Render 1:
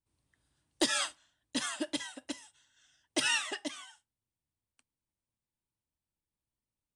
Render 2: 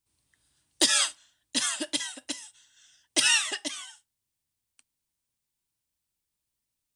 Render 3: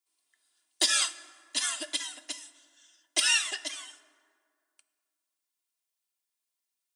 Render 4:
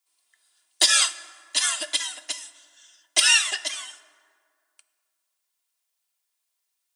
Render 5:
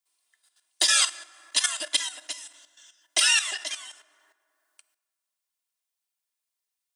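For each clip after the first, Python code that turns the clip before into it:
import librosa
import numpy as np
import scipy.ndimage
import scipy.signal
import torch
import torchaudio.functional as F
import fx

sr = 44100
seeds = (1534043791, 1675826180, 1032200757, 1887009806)

y1 = fx.high_shelf(x, sr, hz=2200.0, db=11.5)
y2 = scipy.signal.sosfilt(scipy.signal.butter(2, 530.0, 'highpass', fs=sr, output='sos'), y1)
y2 = y2 + 0.59 * np.pad(y2, (int(2.9 * sr / 1000.0), 0))[:len(y2)]
y2 = fx.rev_plate(y2, sr, seeds[0], rt60_s=2.2, hf_ratio=0.5, predelay_ms=0, drr_db=14.5)
y2 = y2 * 10.0 ** (-3.5 / 20.0)
y3 = scipy.signal.sosfilt(scipy.signal.butter(2, 500.0, 'highpass', fs=sr, output='sos'), y2)
y3 = y3 * 10.0 ** (7.0 / 20.0)
y4 = fx.level_steps(y3, sr, step_db=11)
y4 = y4 * 10.0 ** (2.0 / 20.0)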